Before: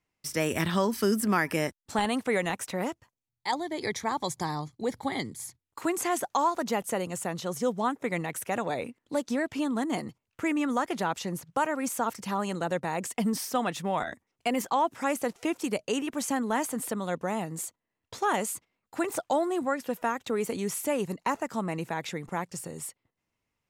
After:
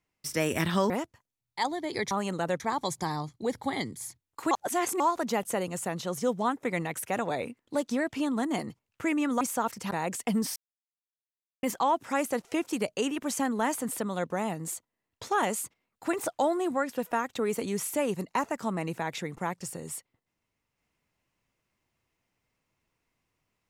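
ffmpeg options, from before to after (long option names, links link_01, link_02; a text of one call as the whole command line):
ffmpeg -i in.wav -filter_complex "[0:a]asplit=10[link_01][link_02][link_03][link_04][link_05][link_06][link_07][link_08][link_09][link_10];[link_01]atrim=end=0.902[link_11];[link_02]atrim=start=2.778:end=3.992[link_12];[link_03]atrim=start=12.328:end=12.822[link_13];[link_04]atrim=start=3.988:end=5.902[link_14];[link_05]atrim=start=5.898:end=6.392,asetpts=PTS-STARTPTS,areverse[link_15];[link_06]atrim=start=6.388:end=10.802[link_16];[link_07]atrim=start=11.828:end=12.332[link_17];[link_08]atrim=start=12.818:end=13.47,asetpts=PTS-STARTPTS,afade=type=out:start_time=0.648:duration=0.004:curve=hsin[link_18];[link_09]atrim=start=13.47:end=14.54,asetpts=PTS-STARTPTS,volume=0[link_19];[link_10]atrim=start=14.54,asetpts=PTS-STARTPTS,afade=type=in:duration=0.004:curve=hsin[link_20];[link_11][link_12]acrossfade=duration=0.004:curve1=hsin:curve2=hsin[link_21];[link_21][link_13]acrossfade=duration=0.004:curve1=hsin:curve2=hsin[link_22];[link_22][link_14]acrossfade=duration=0.004:curve1=hsin:curve2=hsin[link_23];[link_23][link_15]acrossfade=duration=0.004:curve1=hsin:curve2=hsin[link_24];[link_24][link_16]acrossfade=duration=0.004:curve1=hsin:curve2=hsin[link_25];[link_25][link_17]acrossfade=duration=0.004:curve1=hsin:curve2=hsin[link_26];[link_18][link_19][link_20]concat=n=3:v=0:a=1[link_27];[link_26][link_27]acrossfade=duration=0.004:curve1=hsin:curve2=hsin" out.wav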